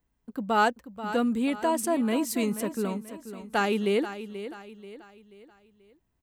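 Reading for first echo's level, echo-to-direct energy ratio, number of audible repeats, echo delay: -12.0 dB, -11.0 dB, 4, 484 ms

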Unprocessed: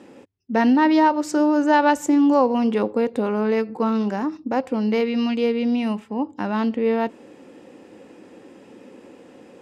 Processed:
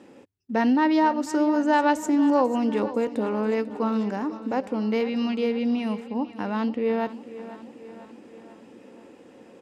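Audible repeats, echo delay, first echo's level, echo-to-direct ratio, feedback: 5, 494 ms, -15.0 dB, -13.5 dB, 57%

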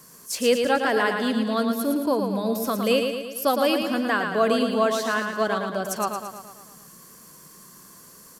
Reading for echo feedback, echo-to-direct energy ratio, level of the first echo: 56%, -4.0 dB, -5.5 dB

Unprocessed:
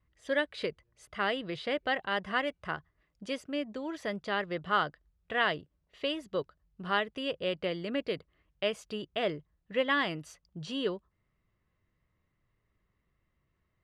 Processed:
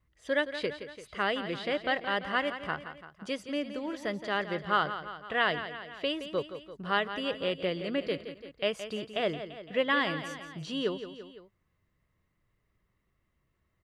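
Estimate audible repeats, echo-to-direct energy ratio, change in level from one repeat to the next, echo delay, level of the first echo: 3, -9.5 dB, -4.5 dB, 170 ms, -11.0 dB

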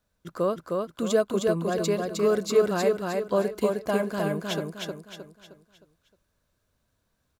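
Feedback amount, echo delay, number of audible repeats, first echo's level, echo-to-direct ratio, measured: 40%, 310 ms, 5, -3.0 dB, -2.0 dB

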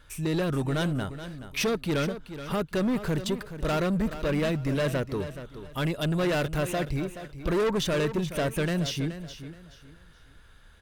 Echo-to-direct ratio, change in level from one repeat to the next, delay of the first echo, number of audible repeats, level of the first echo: -11.5 dB, -11.0 dB, 425 ms, 3, -12.0 dB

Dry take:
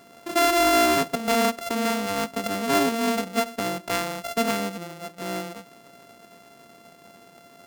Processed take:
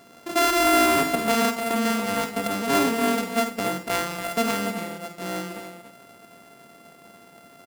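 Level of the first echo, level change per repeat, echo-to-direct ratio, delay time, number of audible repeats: -9.0 dB, no regular repeats, -5.5 dB, 50 ms, 3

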